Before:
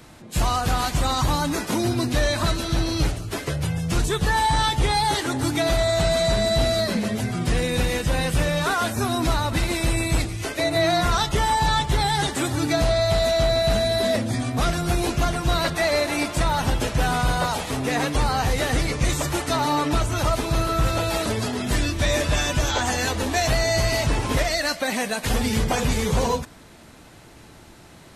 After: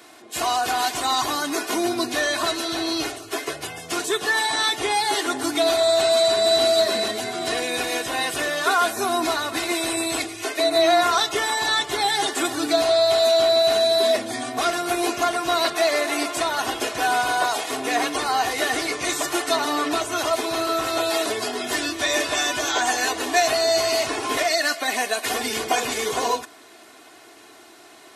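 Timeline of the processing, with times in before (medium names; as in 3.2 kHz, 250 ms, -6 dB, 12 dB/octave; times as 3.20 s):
3.93–4.80 s: high-pass 130 Hz
5.97–6.63 s: echo throw 480 ms, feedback 55%, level -7 dB
whole clip: high-pass 380 Hz 12 dB/octave; comb 2.8 ms, depth 66%; trim +1 dB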